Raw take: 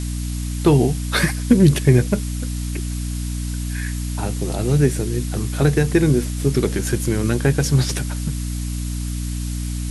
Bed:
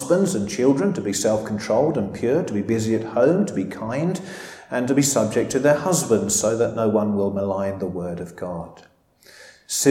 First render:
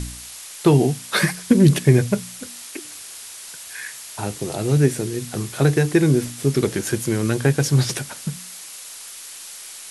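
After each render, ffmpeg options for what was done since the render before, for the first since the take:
-af "bandreject=f=60:t=h:w=4,bandreject=f=120:t=h:w=4,bandreject=f=180:t=h:w=4,bandreject=f=240:t=h:w=4,bandreject=f=300:t=h:w=4"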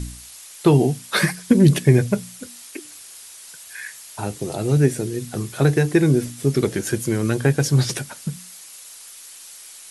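-af "afftdn=nr=6:nf=-38"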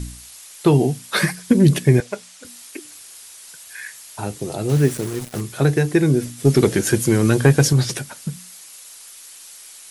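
-filter_complex "[0:a]asettb=1/sr,asplit=3[a][b][c];[a]atrim=end=2.004[d];[b]atrim=start=2:end=2.45,asetpts=PTS-STARTPTS,afade=t=in:d=0.004:c=qsin,afade=t=out:st=0.446:d=0.004:c=qsin,highpass=520,lowpass=7.7k[e];[c]atrim=start=2.446[f];[d][e]acrossfade=d=0.004:c1=hsin:c2=qsin[g];[g][f]acrossfade=d=0.004:c1=qsin:c2=hsin,asettb=1/sr,asplit=3[h][i][j];[h]atrim=end=4.694[k];[i]atrim=start=4.69:end=5.41,asetpts=PTS-STARTPTS,afade=t=in:d=0.004:c=qsin,afade=t=out:st=0.716:d=0.004:c=qsin,acrusher=bits=4:mix=0:aa=0.5[l];[j]atrim=start=5.406[m];[k][l]acrossfade=d=0.004:c1=hsin:c2=qsin[n];[n][m]acrossfade=d=0.004:c1=qsin:c2=hsin,asettb=1/sr,asplit=3[o][p][q];[o]atrim=end=6.454[r];[p]atrim=start=6.45:end=7.73,asetpts=PTS-STARTPTS,afade=t=in:d=0.004:c=qsin,afade=t=out:st=1.276:d=0.004:c=qsin,acontrast=43[s];[q]atrim=start=7.726[t];[r][s]acrossfade=d=0.004:c1=hsin:c2=qsin[u];[u][t]acrossfade=d=0.004:c1=qsin:c2=hsin"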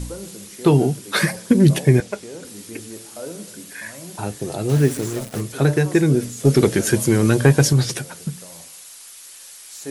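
-filter_complex "[1:a]volume=-16.5dB[a];[0:a][a]amix=inputs=2:normalize=0"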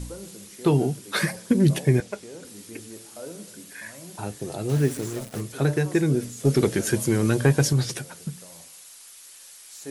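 -af "volume=-5.5dB"

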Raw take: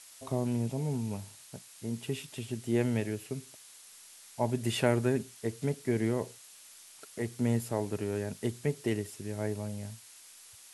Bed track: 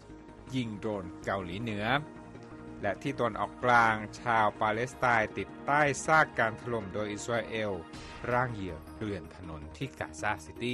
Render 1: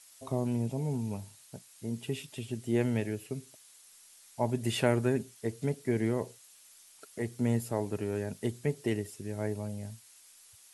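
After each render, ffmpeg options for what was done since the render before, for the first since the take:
-af "afftdn=nr=6:nf=-54"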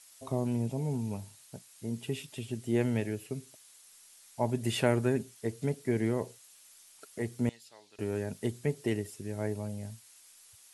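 -filter_complex "[0:a]asettb=1/sr,asplit=3[a][b][c];[a]atrim=end=7.494[d];[b]atrim=start=7.49:end=7.99,asetpts=PTS-STARTPTS,afade=t=in:d=0.004:c=qsin,afade=t=out:st=0.496:d=0.004:c=qsin,bandpass=f=4k:t=q:w=2.2[e];[c]atrim=start=7.986[f];[d][e]acrossfade=d=0.004:c1=hsin:c2=qsin[g];[g][f]acrossfade=d=0.004:c1=qsin:c2=hsin"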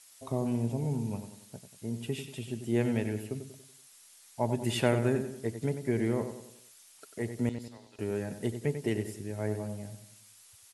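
-filter_complex "[0:a]asplit=2[a][b];[b]adelay=94,lowpass=f=3.6k:p=1,volume=-9dB,asplit=2[c][d];[d]adelay=94,lowpass=f=3.6k:p=1,volume=0.46,asplit=2[e][f];[f]adelay=94,lowpass=f=3.6k:p=1,volume=0.46,asplit=2[g][h];[h]adelay=94,lowpass=f=3.6k:p=1,volume=0.46,asplit=2[i][j];[j]adelay=94,lowpass=f=3.6k:p=1,volume=0.46[k];[a][c][e][g][i][k]amix=inputs=6:normalize=0"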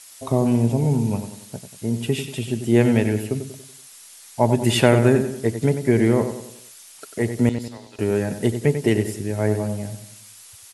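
-af "volume=12dB,alimiter=limit=-2dB:level=0:latency=1"

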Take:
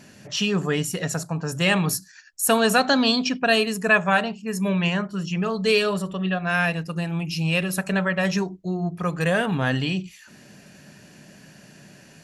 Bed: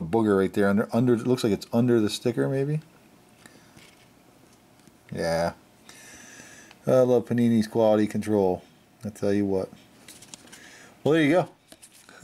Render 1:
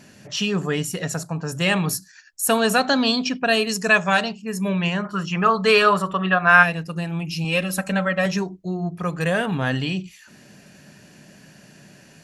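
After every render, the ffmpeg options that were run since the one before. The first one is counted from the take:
-filter_complex "[0:a]asettb=1/sr,asplit=3[a][b][c];[a]atrim=end=3.694[d];[b]atrim=start=3.69:end=4.33,asetpts=PTS-STARTPTS,afade=t=in:d=0.004:c=qsin,afade=t=out:st=0.636:d=0.004:c=qsin,equalizer=f=5.4k:t=o:w=1.1:g=13[e];[c]atrim=start=4.326[f];[d][e]acrossfade=d=0.004:c1=hsin:c2=qsin[g];[g][f]acrossfade=d=0.004:c1=qsin:c2=hsin,asplit=3[h][i][j];[h]afade=t=out:st=5.04:d=0.02[k];[i]equalizer=f=1.2k:w=0.93:g=15,afade=t=in:st=5.04:d=0.02,afade=t=out:st=6.62:d=0.02[l];[j]afade=t=in:st=6.62:d=0.02[m];[k][l][m]amix=inputs=3:normalize=0,asettb=1/sr,asplit=3[n][o][p];[n]atrim=end=7.444[q];[o]atrim=start=7.44:end=8.26,asetpts=PTS-STARTPTS,afade=t=in:d=0.004:c=qsin,afade=t=out:st=0.816:d=0.004:c=qsin,aecho=1:1:3.8:0.65,atrim=end_sample=36162[r];[p]atrim=start=8.256[s];[q][r]acrossfade=d=0.004:c1=hsin:c2=qsin[t];[t][s]acrossfade=d=0.004:c1=qsin:c2=hsin"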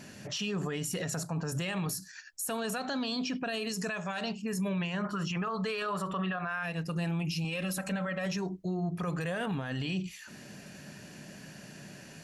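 -af "acompressor=threshold=-24dB:ratio=6,alimiter=level_in=2dB:limit=-24dB:level=0:latency=1:release=27,volume=-2dB"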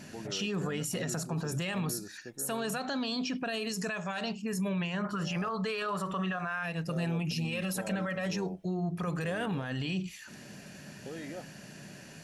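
-filter_complex "[1:a]volume=-22dB[a];[0:a][a]amix=inputs=2:normalize=0"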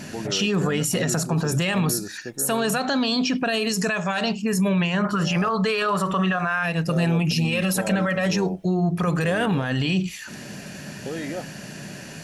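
-af "volume=11dB"

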